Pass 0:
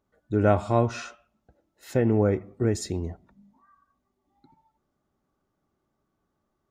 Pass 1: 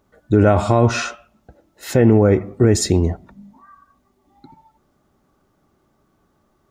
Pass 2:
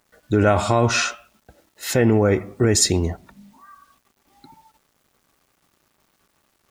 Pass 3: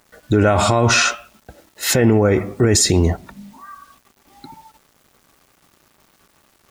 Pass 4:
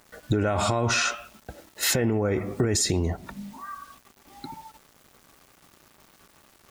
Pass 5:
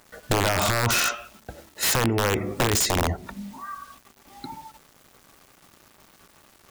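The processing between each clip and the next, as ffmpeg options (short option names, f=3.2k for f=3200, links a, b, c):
-af "alimiter=level_in=16.5dB:limit=-1dB:release=50:level=0:latency=1,volume=-2.5dB"
-af "tiltshelf=f=1.1k:g=-5,acrusher=bits=9:mix=0:aa=0.000001"
-af "alimiter=level_in=12.5dB:limit=-1dB:release=50:level=0:latency=1,volume=-4dB"
-af "acompressor=threshold=-21dB:ratio=6"
-af "bandreject=f=73.31:t=h:w=4,bandreject=f=146.62:t=h:w=4,bandreject=f=219.93:t=h:w=4,bandreject=f=293.24:t=h:w=4,bandreject=f=366.55:t=h:w=4,bandreject=f=439.86:t=h:w=4,aeval=exprs='(mod(6.68*val(0)+1,2)-1)/6.68':c=same,volume=2dB"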